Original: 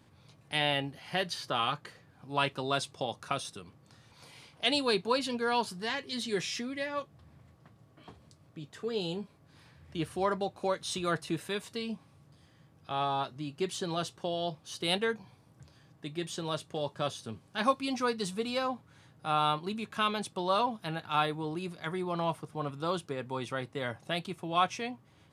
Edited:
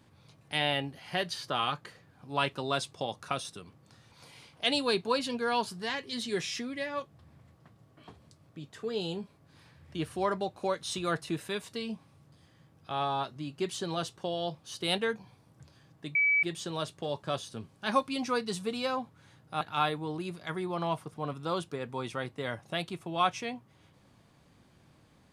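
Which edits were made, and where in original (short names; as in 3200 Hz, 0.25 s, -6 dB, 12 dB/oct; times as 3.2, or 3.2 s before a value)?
16.15 add tone 2290 Hz -22 dBFS 0.28 s
19.33–20.98 cut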